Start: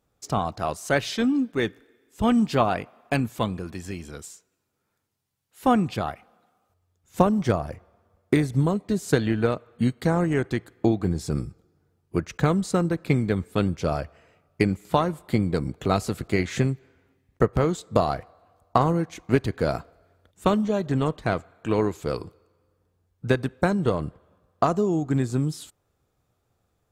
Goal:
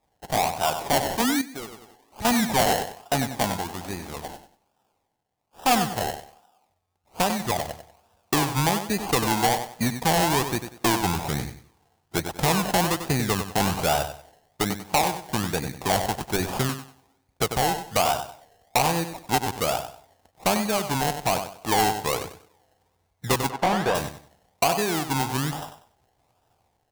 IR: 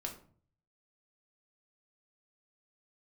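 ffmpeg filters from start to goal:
-filter_complex "[0:a]asettb=1/sr,asplit=3[a][b][c];[a]atrim=end=13.604[d];[b]atrim=start=13.6:end=14.02,asetpts=PTS-STARTPTS,afade=t=in:d=0.004:c=qsin,afade=t=out:st=0.416:d=0.004:c=qsin,aeval=exprs='val(0)+0.5*0.02*sgn(val(0))':c=same[e];[c]atrim=start=14.016[f];[d][e]acrossfade=d=0.004:c1=hsin:c2=qsin[g];[g][f]acrossfade=d=0.004:c1=qsin:c2=hsin,acrusher=samples=29:mix=1:aa=0.000001:lfo=1:lforange=17.4:lforate=1.2,aecho=1:1:95|190|285:0.282|0.0733|0.0191,asettb=1/sr,asplit=3[h][i][j];[h]atrim=end=23.504[k];[i]atrim=start=23.5:end=23.95,asetpts=PTS-STARTPTS,afade=t=in:d=0.004:c=qsin,afade=t=out:st=0.446:d=0.004:c=qsin,asplit=2[l][m];[m]highpass=f=720:p=1,volume=14dB,asoftclip=type=tanh:threshold=-9dB[n];[l][n]amix=inputs=2:normalize=0,lowpass=f=1.1k:p=1,volume=-6dB[o];[j]atrim=start=23.946[p];[k][o]acrossfade=d=0.004:c1=hsin:c2=qsin[q];[q][p]acrossfade=d=0.004:c1=qsin:c2=hsin,equalizer=f=800:t=o:w=0.74:g=13,dynaudnorm=f=250:g=7:m=4.5dB,asoftclip=type=tanh:threshold=-13dB,asettb=1/sr,asplit=3[r][s][t];[r]atrim=end=1.414[u];[s]atrim=start=1.41:end=2.25,asetpts=PTS-STARTPTS,afade=t=in:d=0.004:c=qsin,afade=t=out:st=0.836:d=0.004:c=qsin,acompressor=threshold=-33dB:ratio=5[v];[t]atrim=start=2.246[w];[u][v]acrossfade=d=0.004:c1=hsin:c2=qsin[x];[x][w]acrossfade=d=0.004:c1=qsin:c2=hsin,highshelf=f=2.5k:g=11,volume=-3.5dB"

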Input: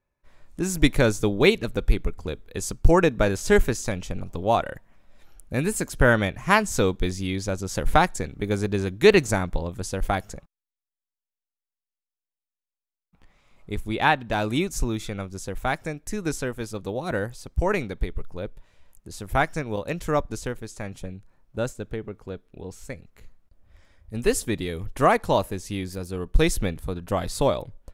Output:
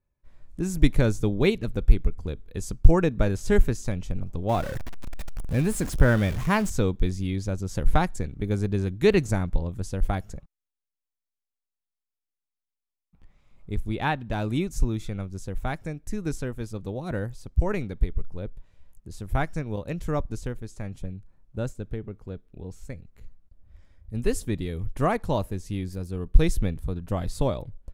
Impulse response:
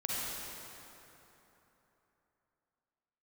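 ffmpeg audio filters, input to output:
-filter_complex "[0:a]asettb=1/sr,asplit=3[a][b][c];[a]atrim=end=4.494[d];[b]atrim=start=4.49:end=6.7,asetpts=PTS-STARTPTS,afade=t=in:d=0.004:c=qsin,afade=t=out:st=2.206:d=0.004:c=qsin,aeval=exprs='val(0)+0.5*0.0473*sgn(val(0))':c=same[e];[c]atrim=start=6.696[f];[d][e]acrossfade=d=0.004:c1=hsin:c2=qsin[g];[g][f]acrossfade=d=0.004:c1=qsin:c2=hsin,lowshelf=f=270:g=12,volume=-8dB"

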